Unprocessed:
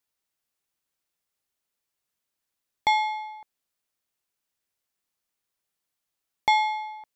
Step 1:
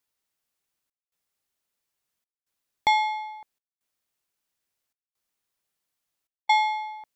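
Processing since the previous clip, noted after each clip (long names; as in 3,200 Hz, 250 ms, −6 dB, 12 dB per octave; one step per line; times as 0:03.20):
gate pattern "xxxxxxxx..xx" 134 BPM −60 dB
level +1 dB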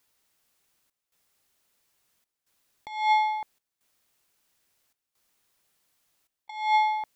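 compressor whose output falls as the input rises −29 dBFS, ratio −0.5
level +5 dB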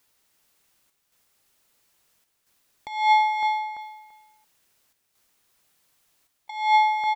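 repeating echo 338 ms, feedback 18%, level −6 dB
level +4 dB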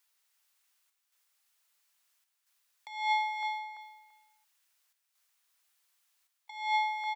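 high-pass filter 1,000 Hz 12 dB per octave
level −7 dB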